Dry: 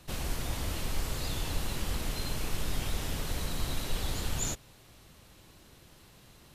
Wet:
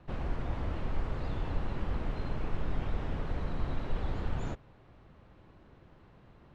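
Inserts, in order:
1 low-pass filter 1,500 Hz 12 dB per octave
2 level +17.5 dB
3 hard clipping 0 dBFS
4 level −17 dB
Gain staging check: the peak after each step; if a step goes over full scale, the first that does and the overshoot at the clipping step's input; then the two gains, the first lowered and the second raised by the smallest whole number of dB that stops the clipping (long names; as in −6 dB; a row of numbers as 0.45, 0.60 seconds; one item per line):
−19.5, −2.0, −2.0, −19.0 dBFS
no step passes full scale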